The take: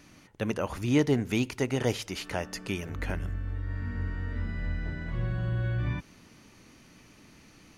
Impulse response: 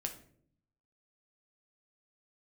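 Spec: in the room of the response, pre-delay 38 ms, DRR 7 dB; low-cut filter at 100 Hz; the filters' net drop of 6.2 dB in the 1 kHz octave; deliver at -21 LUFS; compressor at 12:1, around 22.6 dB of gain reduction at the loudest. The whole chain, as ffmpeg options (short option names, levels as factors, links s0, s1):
-filter_complex "[0:a]highpass=100,equalizer=f=1000:t=o:g=-8.5,acompressor=threshold=0.00708:ratio=12,asplit=2[s0][s1];[1:a]atrim=start_sample=2205,adelay=38[s2];[s1][s2]afir=irnorm=-1:irlink=0,volume=0.473[s3];[s0][s3]amix=inputs=2:normalize=0,volume=21.1"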